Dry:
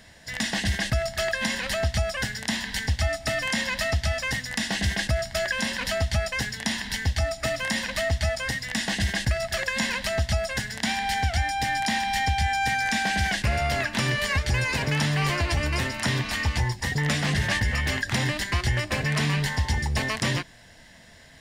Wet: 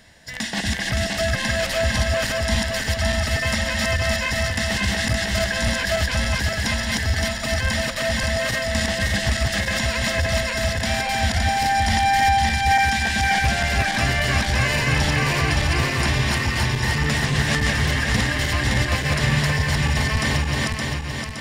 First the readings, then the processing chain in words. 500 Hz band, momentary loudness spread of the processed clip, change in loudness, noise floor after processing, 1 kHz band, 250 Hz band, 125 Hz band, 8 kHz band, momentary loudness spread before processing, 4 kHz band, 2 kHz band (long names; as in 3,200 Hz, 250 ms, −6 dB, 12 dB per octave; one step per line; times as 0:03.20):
+4.5 dB, 4 LU, +5.0 dB, −27 dBFS, +6.5 dB, +5.0 dB, +5.0 dB, +5.0 dB, 4 LU, +5.0 dB, +5.0 dB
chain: feedback delay that plays each chunk backwards 284 ms, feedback 72%, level 0 dB